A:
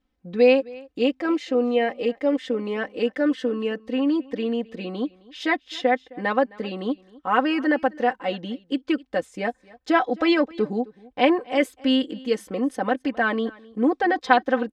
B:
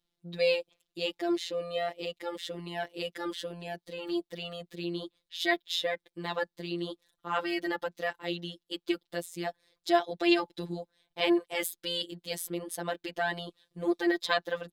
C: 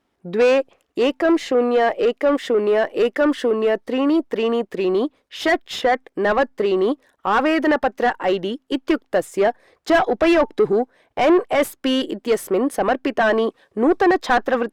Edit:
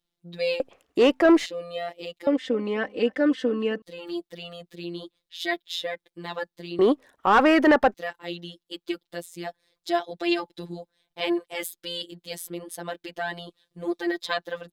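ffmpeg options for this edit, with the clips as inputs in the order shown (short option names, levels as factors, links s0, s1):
-filter_complex "[2:a]asplit=2[s0][s1];[1:a]asplit=4[s2][s3][s4][s5];[s2]atrim=end=0.602[s6];[s0]atrim=start=0.598:end=1.462[s7];[s3]atrim=start=1.458:end=2.272[s8];[0:a]atrim=start=2.268:end=3.822[s9];[s4]atrim=start=3.818:end=6.792[s10];[s1]atrim=start=6.788:end=7.942[s11];[s5]atrim=start=7.938[s12];[s6][s7]acrossfade=d=0.004:c1=hsin:c2=hsin[s13];[s13][s8]acrossfade=d=0.004:c1=hsin:c2=hsin[s14];[s14][s9]acrossfade=d=0.004:c1=hsin:c2=hsin[s15];[s15][s10]acrossfade=d=0.004:c1=hsin:c2=hsin[s16];[s16][s11]acrossfade=d=0.004:c1=hsin:c2=hsin[s17];[s17][s12]acrossfade=d=0.004:c1=hsin:c2=hsin"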